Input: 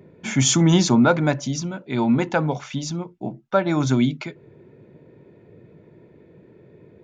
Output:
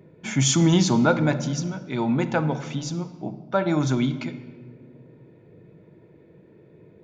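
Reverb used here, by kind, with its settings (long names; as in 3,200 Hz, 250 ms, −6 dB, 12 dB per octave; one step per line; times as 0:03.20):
rectangular room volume 1,500 cubic metres, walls mixed, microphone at 0.61 metres
level −3 dB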